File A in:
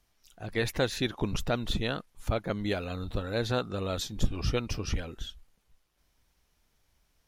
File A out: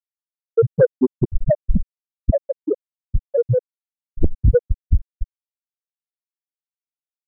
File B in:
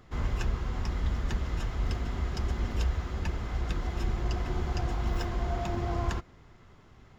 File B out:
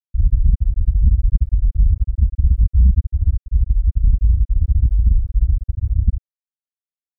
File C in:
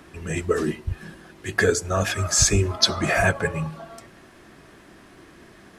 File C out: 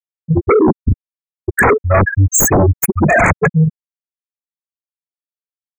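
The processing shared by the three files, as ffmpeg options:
-af "afftfilt=real='re*gte(hypot(re,im),0.316)':imag='im*gte(hypot(re,im),0.316)':win_size=1024:overlap=0.75,acontrast=50,agate=range=0.0224:threshold=0.00708:ratio=3:detection=peak,aeval=exprs='0.891*sin(PI/2*5.62*val(0)/0.891)':c=same,asuperstop=centerf=4000:order=20:qfactor=0.97,volume=0.531"

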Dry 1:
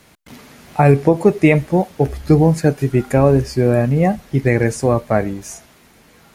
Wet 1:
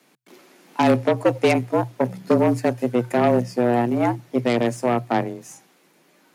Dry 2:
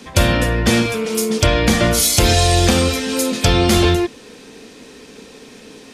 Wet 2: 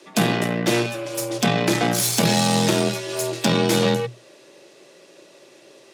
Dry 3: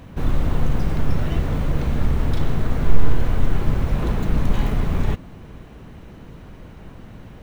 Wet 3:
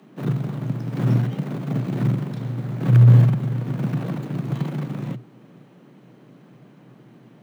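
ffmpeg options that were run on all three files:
-af "aeval=exprs='0.891*(cos(1*acos(clip(val(0)/0.891,-1,1)))-cos(1*PI/2))+0.0631*(cos(5*acos(clip(val(0)/0.891,-1,1)))-cos(5*PI/2))+0.126*(cos(6*acos(clip(val(0)/0.891,-1,1)))-cos(6*PI/2))+0.0794*(cos(7*acos(clip(val(0)/0.891,-1,1)))-cos(7*PI/2))+0.0224*(cos(8*acos(clip(val(0)/0.891,-1,1)))-cos(8*PI/2))':c=same,afreqshift=120,volume=0.473"

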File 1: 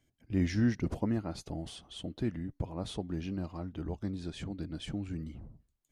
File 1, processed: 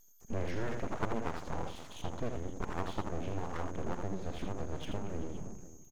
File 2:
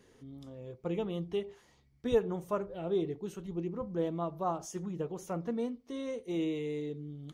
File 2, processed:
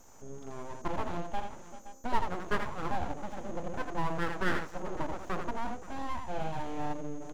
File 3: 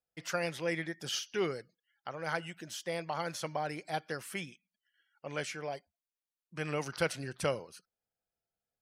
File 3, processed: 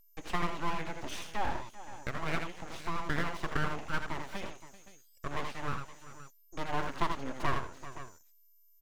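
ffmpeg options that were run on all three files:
-filter_complex "[0:a]equalizer=f=125:t=o:w=1:g=4,equalizer=f=250:t=o:w=1:g=-5,equalizer=f=500:t=o:w=1:g=3,equalizer=f=1000:t=o:w=1:g=7,equalizer=f=2000:t=o:w=1:g=-8,equalizer=f=4000:t=o:w=1:g=-10,equalizer=f=8000:t=o:w=1:g=-11,aecho=1:1:61|81|387|519:0.178|0.501|0.112|0.119,acrossover=split=370|5700[s0][s1][s2];[s0]alimiter=level_in=2:limit=0.0631:level=0:latency=1:release=395,volume=0.501[s3];[s2]acrusher=samples=32:mix=1:aa=0.000001:lfo=1:lforange=51.2:lforate=2[s4];[s3][s1][s4]amix=inputs=3:normalize=0,aeval=exprs='val(0)+0.000562*sin(2*PI*6500*n/s)':c=same,asplit=2[s5][s6];[s6]acompressor=threshold=0.00891:ratio=6,volume=0.944[s7];[s5][s7]amix=inputs=2:normalize=0,equalizer=f=3100:t=o:w=0.77:g=4,aeval=exprs='abs(val(0))':c=same"

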